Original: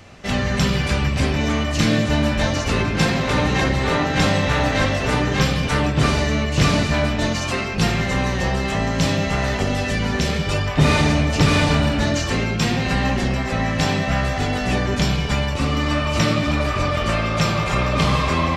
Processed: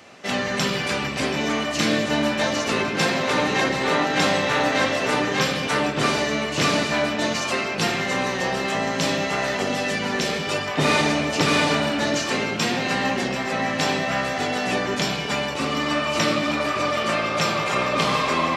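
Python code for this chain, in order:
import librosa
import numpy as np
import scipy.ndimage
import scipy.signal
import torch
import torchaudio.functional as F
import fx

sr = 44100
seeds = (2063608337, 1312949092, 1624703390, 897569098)

y = scipy.signal.sosfilt(scipy.signal.butter(2, 260.0, 'highpass', fs=sr, output='sos'), x)
y = y + 10.0 ** (-14.5 / 20.0) * np.pad(y, (int(730 * sr / 1000.0), 0))[:len(y)]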